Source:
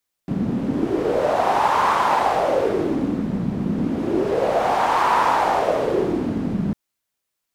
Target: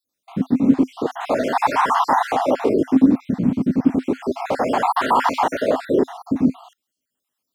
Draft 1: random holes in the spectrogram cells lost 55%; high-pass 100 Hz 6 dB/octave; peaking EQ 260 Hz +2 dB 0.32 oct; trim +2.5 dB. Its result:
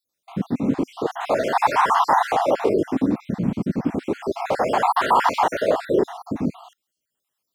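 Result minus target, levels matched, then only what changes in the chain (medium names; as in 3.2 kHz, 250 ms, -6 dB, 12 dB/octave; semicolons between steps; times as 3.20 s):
250 Hz band -4.0 dB
change: peaking EQ 260 Hz +12.5 dB 0.32 oct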